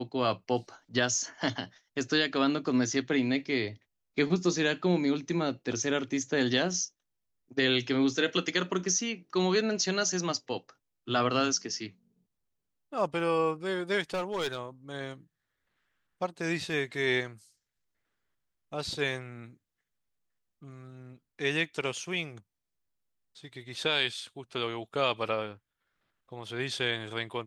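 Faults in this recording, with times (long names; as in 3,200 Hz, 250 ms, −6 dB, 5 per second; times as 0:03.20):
0:14.14–0:14.60: clipping −27 dBFS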